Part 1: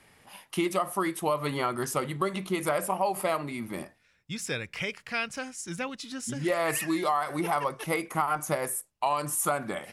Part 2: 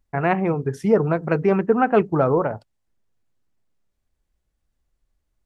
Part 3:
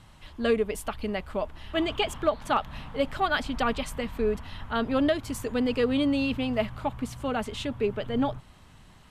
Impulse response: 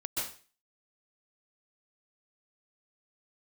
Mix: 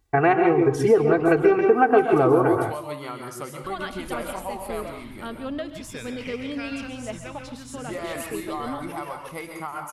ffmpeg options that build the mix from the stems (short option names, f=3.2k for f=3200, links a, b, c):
-filter_complex "[0:a]adelay=1450,volume=-10dB,asplit=2[a][b];[b]volume=-3.5dB[c];[1:a]highpass=53,aecho=1:1:2.6:0.86,volume=2.5dB,asplit=2[d][e];[e]volume=-5dB[f];[2:a]adelay=500,volume=-9dB,asplit=3[g][h][i];[g]atrim=end=1.53,asetpts=PTS-STARTPTS,afade=t=out:st=1.526:d=0.004:c=hsin[j];[h]atrim=start=1.53:end=3.64,asetpts=PTS-STARTPTS,volume=0[k];[i]atrim=start=3.64,asetpts=PTS-STARTPTS,afade=t=in:d=0.004:c=hsin[l];[j][k][l]concat=n=3:v=0:a=1,asplit=2[m][n];[n]volume=-11.5dB[o];[3:a]atrim=start_sample=2205[p];[c][f][o]amix=inputs=3:normalize=0[q];[q][p]afir=irnorm=-1:irlink=0[r];[a][d][m][r]amix=inputs=4:normalize=0,acompressor=threshold=-16dB:ratio=3"